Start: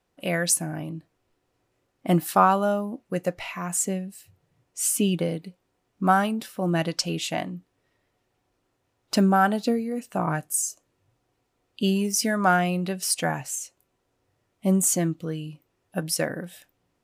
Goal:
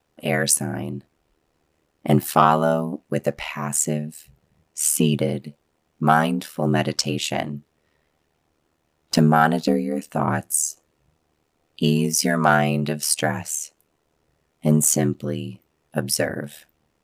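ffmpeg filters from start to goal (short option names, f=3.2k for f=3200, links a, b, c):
-af "acontrast=85,aeval=exprs='val(0)*sin(2*PI*38*n/s)':c=same"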